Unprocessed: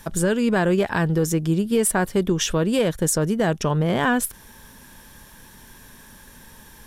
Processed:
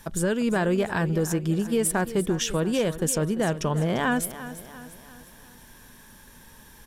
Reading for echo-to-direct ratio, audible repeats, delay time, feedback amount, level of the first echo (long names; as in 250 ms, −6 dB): −13.0 dB, 4, 345 ms, 48%, −14.0 dB